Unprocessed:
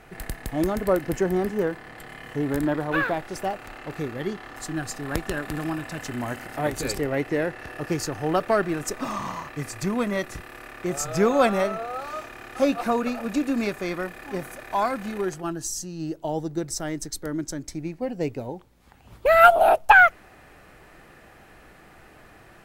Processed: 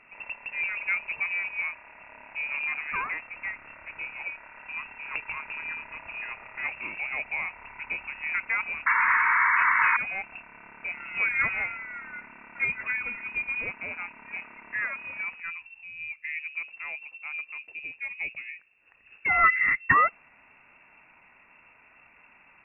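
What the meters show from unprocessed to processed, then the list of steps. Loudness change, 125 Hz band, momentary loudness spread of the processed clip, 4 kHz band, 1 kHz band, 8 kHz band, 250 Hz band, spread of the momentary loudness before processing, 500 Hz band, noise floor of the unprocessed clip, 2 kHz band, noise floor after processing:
-3.0 dB, under -15 dB, 18 LU, under -10 dB, -5.5 dB, under -40 dB, -24.5 dB, 15 LU, -23.0 dB, -51 dBFS, +1.0 dB, -58 dBFS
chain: painted sound noise, 8.86–9.97 s, 400–1800 Hz -15 dBFS; frequency inversion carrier 2.7 kHz; trim -7 dB

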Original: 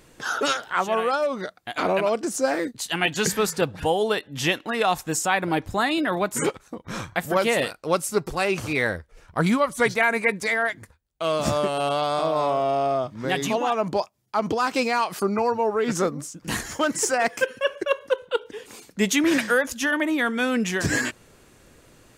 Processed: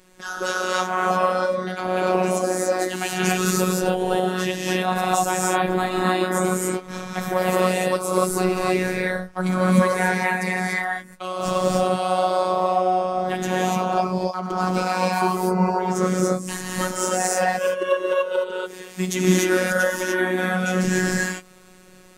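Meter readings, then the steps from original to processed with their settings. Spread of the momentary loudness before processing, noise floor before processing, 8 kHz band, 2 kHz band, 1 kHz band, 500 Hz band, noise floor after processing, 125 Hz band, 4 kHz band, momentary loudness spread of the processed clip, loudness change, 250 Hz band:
8 LU, -56 dBFS, +2.5 dB, 0.0 dB, +3.5 dB, +2.0 dB, -46 dBFS, +6.5 dB, -1.0 dB, 6 LU, +2.0 dB, +3.0 dB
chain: gated-style reverb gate 320 ms rising, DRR -5 dB; dynamic bell 2.6 kHz, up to -6 dB, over -33 dBFS, Q 0.7; robot voice 184 Hz

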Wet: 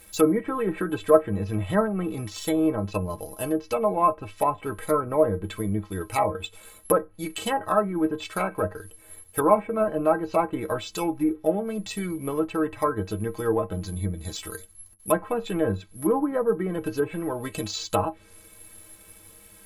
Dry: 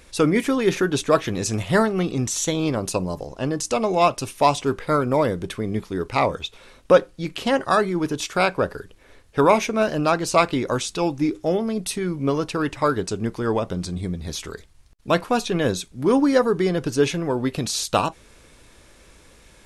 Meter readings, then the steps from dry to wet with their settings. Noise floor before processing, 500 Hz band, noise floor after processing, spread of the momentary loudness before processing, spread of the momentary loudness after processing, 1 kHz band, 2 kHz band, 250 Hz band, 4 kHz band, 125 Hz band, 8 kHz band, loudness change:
-52 dBFS, -3.0 dB, -52 dBFS, 9 LU, 11 LU, -3.5 dB, -8.5 dB, -4.0 dB, -8.5 dB, -4.5 dB, -7.5 dB, -4.0 dB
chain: low-pass that closes with the level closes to 1.6 kHz, closed at -14.5 dBFS; peaking EQ 240 Hz -3 dB 0.37 oct; inharmonic resonator 95 Hz, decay 0.21 s, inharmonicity 0.03; careless resampling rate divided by 4×, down filtered, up zero stuff; low-pass that closes with the level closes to 1.5 kHz, closed at -19.5 dBFS; trim +5 dB

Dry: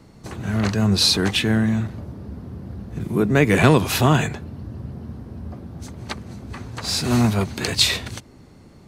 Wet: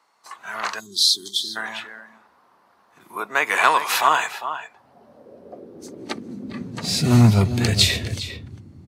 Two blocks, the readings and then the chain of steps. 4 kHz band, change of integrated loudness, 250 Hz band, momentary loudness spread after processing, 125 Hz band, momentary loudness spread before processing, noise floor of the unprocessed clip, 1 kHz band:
+0.5 dB, -0.5 dB, -4.5 dB, 18 LU, -1.0 dB, 19 LU, -47 dBFS, +5.0 dB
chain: echo from a far wall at 69 m, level -10 dB; time-frequency box 0.80–1.56 s, 430–3100 Hz -30 dB; high-pass sweep 1 kHz -> 87 Hz, 4.60–7.65 s; spectral noise reduction 9 dB

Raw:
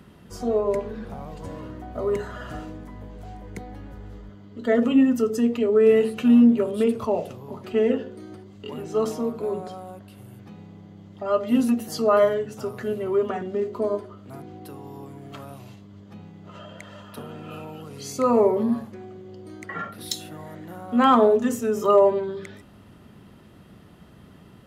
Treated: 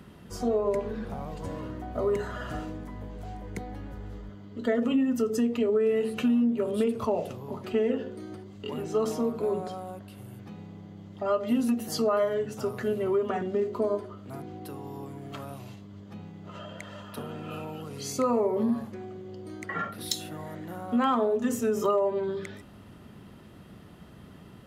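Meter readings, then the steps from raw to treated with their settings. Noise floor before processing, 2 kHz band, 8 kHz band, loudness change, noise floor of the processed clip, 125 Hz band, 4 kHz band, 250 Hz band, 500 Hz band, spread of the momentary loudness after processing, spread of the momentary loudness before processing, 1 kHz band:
-49 dBFS, -4.0 dB, -1.0 dB, -7.0 dB, -49 dBFS, -1.5 dB, -2.0 dB, -6.0 dB, -5.5 dB, 18 LU, 23 LU, -6.0 dB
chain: compression 6:1, threshold -22 dBFS, peak gain reduction 10.5 dB

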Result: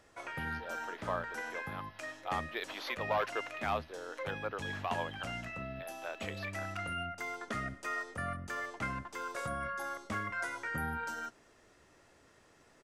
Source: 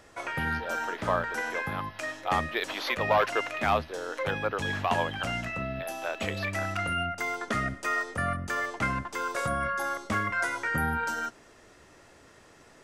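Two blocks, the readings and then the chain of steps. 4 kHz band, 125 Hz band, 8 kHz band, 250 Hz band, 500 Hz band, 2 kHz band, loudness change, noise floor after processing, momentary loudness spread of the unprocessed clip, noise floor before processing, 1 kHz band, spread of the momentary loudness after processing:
-8.5 dB, -8.5 dB, -8.5 dB, -8.5 dB, -8.5 dB, -8.5 dB, -8.5 dB, -64 dBFS, 6 LU, -56 dBFS, -8.5 dB, 6 LU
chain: resampled via 32 kHz; trim -8.5 dB

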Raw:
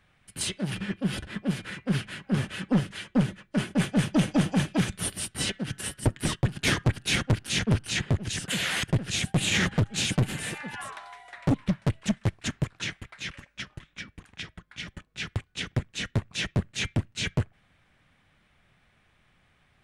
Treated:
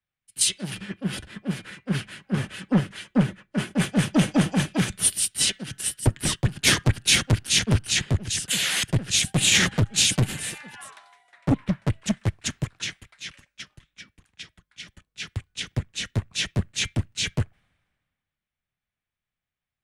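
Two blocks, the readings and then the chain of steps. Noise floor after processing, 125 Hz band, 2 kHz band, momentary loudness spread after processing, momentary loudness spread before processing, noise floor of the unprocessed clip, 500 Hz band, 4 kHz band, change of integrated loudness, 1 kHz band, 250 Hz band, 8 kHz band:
under -85 dBFS, +2.0 dB, +3.0 dB, 19 LU, 15 LU, -66 dBFS, +1.0 dB, +6.5 dB, +4.5 dB, +1.5 dB, +1.5 dB, +10.0 dB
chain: treble shelf 3 kHz +8 dB; three bands expanded up and down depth 70%

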